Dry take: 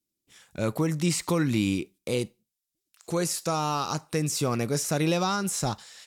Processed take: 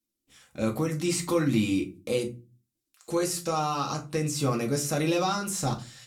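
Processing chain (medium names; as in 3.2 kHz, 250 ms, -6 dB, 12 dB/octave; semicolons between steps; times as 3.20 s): 3.38–4.40 s: treble shelf 9.3 kHz -5.5 dB; reverberation RT60 0.30 s, pre-delay 4 ms, DRR 0.5 dB; trim -3.5 dB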